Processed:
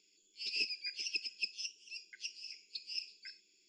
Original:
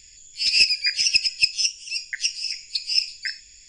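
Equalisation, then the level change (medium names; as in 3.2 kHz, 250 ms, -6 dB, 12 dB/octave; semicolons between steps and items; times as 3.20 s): elliptic high-pass 210 Hz, stop band 40 dB; tape spacing loss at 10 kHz 32 dB; static phaser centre 360 Hz, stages 8; -1.0 dB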